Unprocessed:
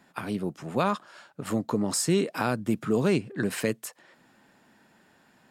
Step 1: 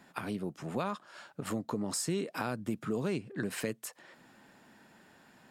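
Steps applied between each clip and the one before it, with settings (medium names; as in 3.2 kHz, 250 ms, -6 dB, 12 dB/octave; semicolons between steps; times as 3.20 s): compression 2:1, threshold -39 dBFS, peak gain reduction 11 dB; trim +1 dB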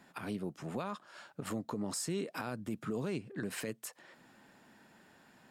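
peak limiter -25.5 dBFS, peak gain reduction 7.5 dB; trim -2 dB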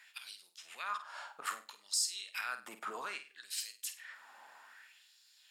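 LFO high-pass sine 0.62 Hz 850–4500 Hz; flutter echo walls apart 8.5 m, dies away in 0.3 s; trim +2.5 dB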